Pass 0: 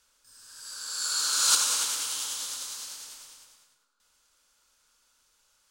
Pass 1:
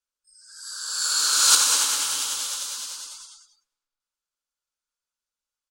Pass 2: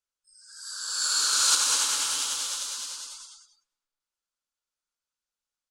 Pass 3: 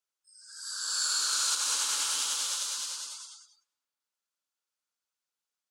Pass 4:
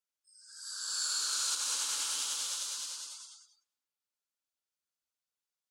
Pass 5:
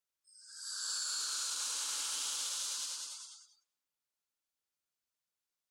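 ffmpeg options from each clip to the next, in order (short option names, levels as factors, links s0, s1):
-filter_complex "[0:a]asplit=2[s0][s1];[s1]adelay=205,lowpass=f=4800:p=1,volume=0.473,asplit=2[s2][s3];[s3]adelay=205,lowpass=f=4800:p=1,volume=0.47,asplit=2[s4][s5];[s5]adelay=205,lowpass=f=4800:p=1,volume=0.47,asplit=2[s6][s7];[s7]adelay=205,lowpass=f=4800:p=1,volume=0.47,asplit=2[s8][s9];[s9]adelay=205,lowpass=f=4800:p=1,volume=0.47,asplit=2[s10][s11];[s11]adelay=205,lowpass=f=4800:p=1,volume=0.47[s12];[s0][s2][s4][s6][s8][s10][s12]amix=inputs=7:normalize=0,afftdn=nr=29:nf=-52,volume=1.88"
-filter_complex "[0:a]lowpass=11000,asplit=2[s0][s1];[s1]alimiter=limit=0.211:level=0:latency=1:release=264,volume=1.26[s2];[s0][s2]amix=inputs=2:normalize=0,volume=0.376"
-af "highpass=f=310:p=1,acompressor=threshold=0.0501:ratio=5"
-af "equalizer=f=1200:t=o:w=1.8:g=-2.5,volume=0.631"
-af "alimiter=level_in=1.68:limit=0.0631:level=0:latency=1:release=19,volume=0.596"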